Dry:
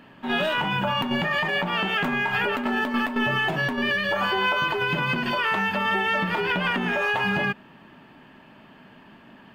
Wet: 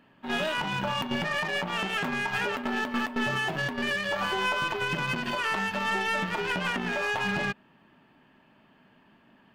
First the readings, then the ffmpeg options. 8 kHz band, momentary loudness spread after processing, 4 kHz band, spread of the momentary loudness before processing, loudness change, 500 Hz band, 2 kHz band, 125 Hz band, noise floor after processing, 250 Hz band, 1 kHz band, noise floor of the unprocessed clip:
n/a, 2 LU, -4.5 dB, 2 LU, -5.0 dB, -5.0 dB, -5.0 dB, -5.0 dB, -61 dBFS, -5.5 dB, -5.0 dB, -51 dBFS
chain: -af "aeval=exprs='0.211*(cos(1*acos(clip(val(0)/0.211,-1,1)))-cos(1*PI/2))+0.0237*(cos(2*acos(clip(val(0)/0.211,-1,1)))-cos(2*PI/2))+0.015*(cos(7*acos(clip(val(0)/0.211,-1,1)))-cos(7*PI/2))':c=same,volume=-4.5dB"

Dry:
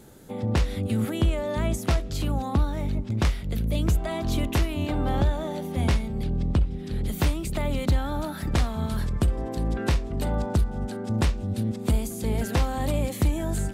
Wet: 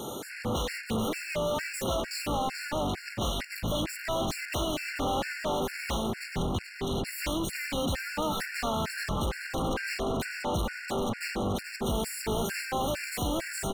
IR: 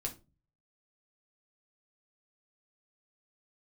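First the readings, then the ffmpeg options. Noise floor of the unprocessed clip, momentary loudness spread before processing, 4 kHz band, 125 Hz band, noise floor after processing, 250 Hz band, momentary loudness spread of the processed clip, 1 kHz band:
-35 dBFS, 4 LU, +3.0 dB, -11.5 dB, -43 dBFS, -5.5 dB, 2 LU, +1.5 dB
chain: -filter_complex "[0:a]asplit=2[a][b];[b]highpass=f=720:p=1,volume=38dB,asoftclip=type=tanh:threshold=-14dB[c];[a][c]amix=inputs=2:normalize=0,lowpass=f=6k:p=1,volume=-6dB,asplit=5[d][e][f][g][h];[e]adelay=432,afreqshift=-52,volume=-7.5dB[i];[f]adelay=864,afreqshift=-104,volume=-15.7dB[j];[g]adelay=1296,afreqshift=-156,volume=-23.9dB[k];[h]adelay=1728,afreqshift=-208,volume=-32dB[l];[d][i][j][k][l]amix=inputs=5:normalize=0,afftfilt=real='re*gt(sin(2*PI*2.2*pts/sr)*(1-2*mod(floor(b*sr/1024/1400),2)),0)':imag='im*gt(sin(2*PI*2.2*pts/sr)*(1-2*mod(floor(b*sr/1024/1400),2)),0)':win_size=1024:overlap=0.75,volume=-9dB"

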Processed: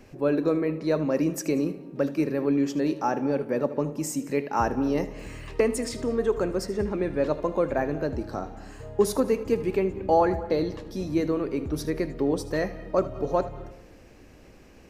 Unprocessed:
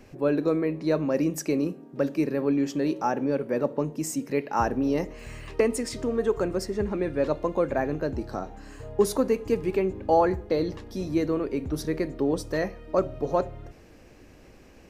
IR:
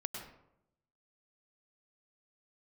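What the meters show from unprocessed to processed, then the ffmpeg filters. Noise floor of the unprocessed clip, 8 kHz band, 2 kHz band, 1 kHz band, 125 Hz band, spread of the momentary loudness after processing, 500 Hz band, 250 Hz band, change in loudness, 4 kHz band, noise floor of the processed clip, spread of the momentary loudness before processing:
-51 dBFS, 0.0 dB, 0.0 dB, 0.0 dB, +0.5 dB, 7 LU, 0.0 dB, +0.5 dB, +0.5 dB, 0.0 dB, -51 dBFS, 7 LU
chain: -filter_complex "[0:a]asplit=2[a][b];[1:a]atrim=start_sample=2205,adelay=78[c];[b][c]afir=irnorm=-1:irlink=0,volume=-13.5dB[d];[a][d]amix=inputs=2:normalize=0"

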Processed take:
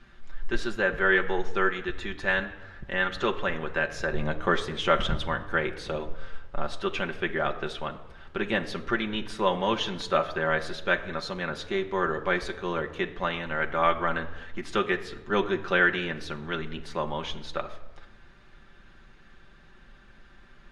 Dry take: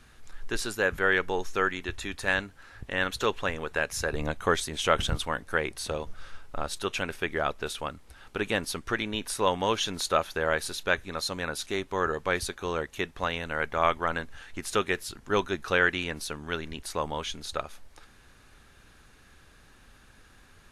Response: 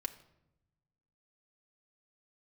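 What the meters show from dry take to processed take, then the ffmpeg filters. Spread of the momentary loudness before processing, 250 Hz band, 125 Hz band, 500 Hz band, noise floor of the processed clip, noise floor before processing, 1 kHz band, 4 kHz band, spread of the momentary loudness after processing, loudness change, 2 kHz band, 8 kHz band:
10 LU, +3.0 dB, +1.0 dB, +1.0 dB, -53 dBFS, -56 dBFS, +1.0 dB, -1.5 dB, 11 LU, +1.0 dB, +1.5 dB, -12.5 dB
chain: -filter_complex "[0:a]lowpass=3.6k[a];[1:a]atrim=start_sample=2205,asetrate=31752,aresample=44100[b];[a][b]afir=irnorm=-1:irlink=0"

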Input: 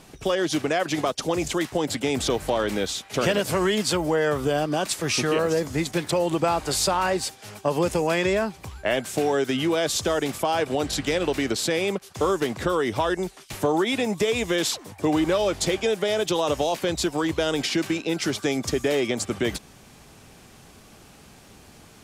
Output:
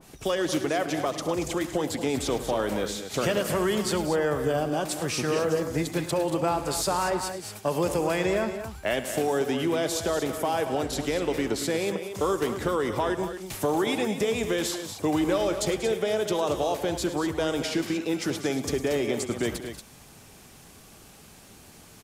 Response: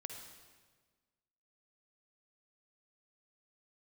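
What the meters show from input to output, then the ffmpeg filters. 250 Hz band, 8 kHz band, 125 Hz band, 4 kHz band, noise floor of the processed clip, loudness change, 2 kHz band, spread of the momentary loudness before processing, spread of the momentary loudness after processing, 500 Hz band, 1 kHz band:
-2.5 dB, -3.5 dB, -2.5 dB, -5.5 dB, -51 dBFS, -3.0 dB, -4.0 dB, 4 LU, 4 LU, -2.5 dB, -2.5 dB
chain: -af "highshelf=f=8.2k:g=9,acontrast=41,aecho=1:1:67|105|188|231:0.133|0.2|0.188|0.316,adynamicequalizer=threshold=0.0251:dfrequency=1900:dqfactor=0.7:tfrequency=1900:tqfactor=0.7:attack=5:release=100:ratio=0.375:range=3:mode=cutabove:tftype=highshelf,volume=-8.5dB"

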